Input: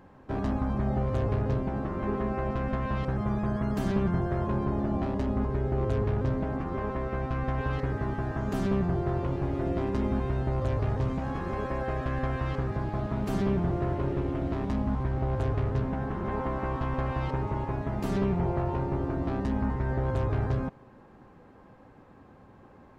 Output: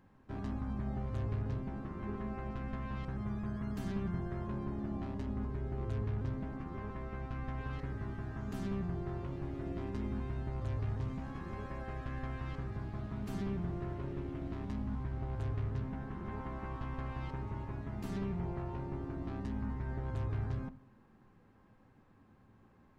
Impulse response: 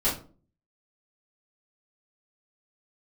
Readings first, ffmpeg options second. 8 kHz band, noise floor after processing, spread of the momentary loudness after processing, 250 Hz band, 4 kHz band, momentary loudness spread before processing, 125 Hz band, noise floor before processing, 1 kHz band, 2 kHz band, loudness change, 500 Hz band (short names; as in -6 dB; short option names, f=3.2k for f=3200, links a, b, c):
n/a, -64 dBFS, 5 LU, -9.5 dB, -9.0 dB, 4 LU, -9.0 dB, -54 dBFS, -12.5 dB, -10.0 dB, -10.0 dB, -13.5 dB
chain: -filter_complex "[0:a]equalizer=f=600:w=0.75:g=-8,asplit=2[a][b];[1:a]atrim=start_sample=2205,lowpass=2.5k[c];[b][c]afir=irnorm=-1:irlink=0,volume=-22.5dB[d];[a][d]amix=inputs=2:normalize=0,volume=-8.5dB"